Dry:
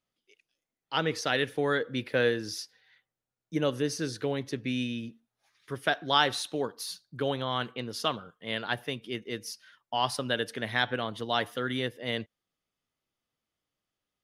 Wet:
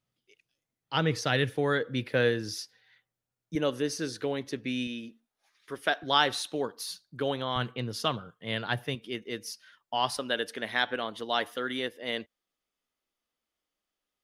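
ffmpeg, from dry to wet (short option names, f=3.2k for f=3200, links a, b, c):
-af "asetnsamples=n=441:p=0,asendcmd='1.49 equalizer g 4.5;3.55 equalizer g -6;4.87 equalizer g -13.5;6.03 equalizer g -3;7.56 equalizer g 7.5;8.95 equalizer g -4;10.17 equalizer g -14',equalizer=f=120:t=o:w=1:g=11.5"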